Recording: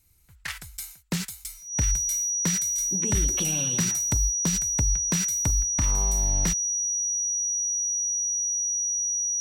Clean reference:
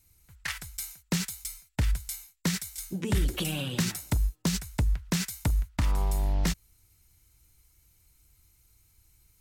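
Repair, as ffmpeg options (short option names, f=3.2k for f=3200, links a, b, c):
-af "bandreject=f=5.8k:w=30"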